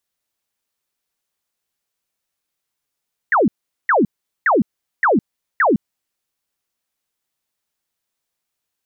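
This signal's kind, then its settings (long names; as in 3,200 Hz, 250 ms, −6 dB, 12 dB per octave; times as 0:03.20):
repeated falling chirps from 2,000 Hz, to 180 Hz, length 0.16 s sine, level −11 dB, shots 5, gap 0.41 s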